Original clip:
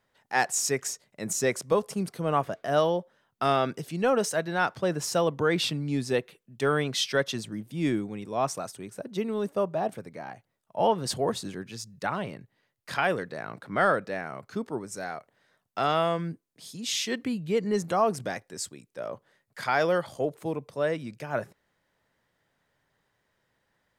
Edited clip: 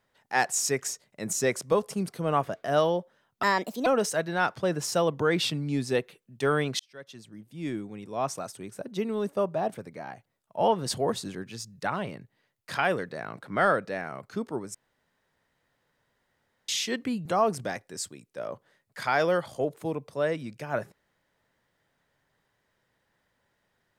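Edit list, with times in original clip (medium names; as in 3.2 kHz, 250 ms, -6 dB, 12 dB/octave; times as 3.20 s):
3.43–4.06 s: speed 145%
6.99–8.85 s: fade in
14.94–16.88 s: room tone
17.45–17.86 s: delete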